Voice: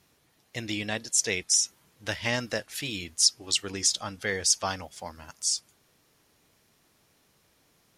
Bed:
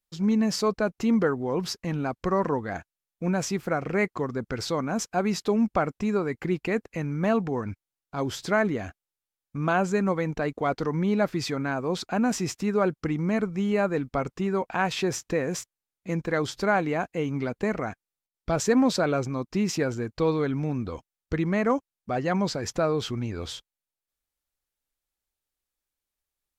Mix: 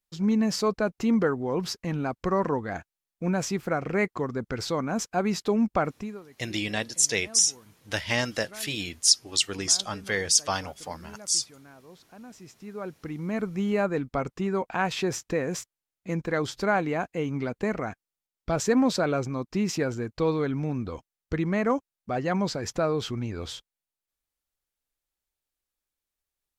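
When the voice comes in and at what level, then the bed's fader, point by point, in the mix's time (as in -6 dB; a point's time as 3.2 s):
5.85 s, +2.0 dB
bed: 5.95 s -0.5 dB
6.26 s -22.5 dB
12.2 s -22.5 dB
13.54 s -1 dB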